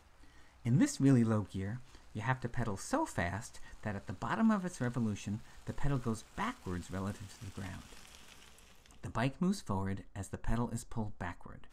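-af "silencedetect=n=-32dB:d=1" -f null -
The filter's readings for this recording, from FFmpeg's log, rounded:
silence_start: 7.66
silence_end: 9.06 | silence_duration: 1.39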